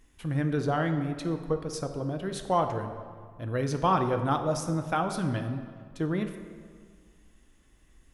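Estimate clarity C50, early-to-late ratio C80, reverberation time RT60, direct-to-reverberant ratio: 8.5 dB, 9.5 dB, 1.9 s, 6.0 dB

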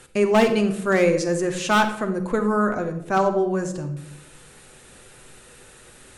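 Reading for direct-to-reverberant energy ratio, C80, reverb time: 5.0 dB, 13.0 dB, 0.85 s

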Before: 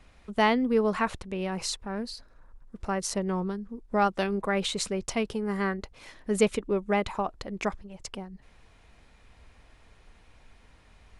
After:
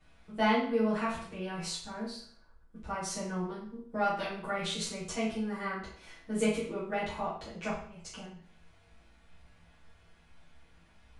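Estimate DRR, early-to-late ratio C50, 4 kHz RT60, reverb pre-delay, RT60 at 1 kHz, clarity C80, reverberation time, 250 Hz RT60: −11.0 dB, 4.0 dB, 0.50 s, 6 ms, 0.55 s, 8.0 dB, 0.55 s, 0.55 s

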